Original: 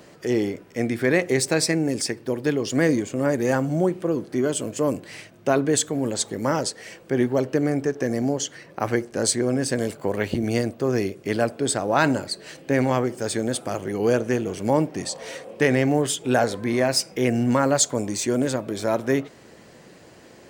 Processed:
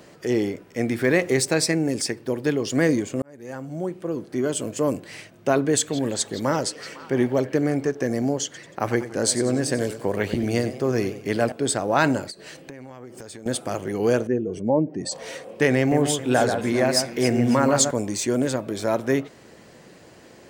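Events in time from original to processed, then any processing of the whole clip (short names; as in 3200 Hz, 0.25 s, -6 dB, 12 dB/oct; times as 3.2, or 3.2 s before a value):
0.88–1.45 G.711 law mismatch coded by mu
3.22–4.65 fade in
5.59–7.9 delay with a stepping band-pass 0.167 s, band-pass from 3400 Hz, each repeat -0.7 oct, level -8 dB
8.44–11.52 warbling echo 94 ms, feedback 47%, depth 150 cents, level -13 dB
12.3–13.46 compressor 16:1, threshold -35 dBFS
14.27–15.12 spectral contrast raised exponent 1.7
15.78–17.91 echo with dull and thin repeats by turns 0.136 s, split 2200 Hz, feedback 59%, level -6 dB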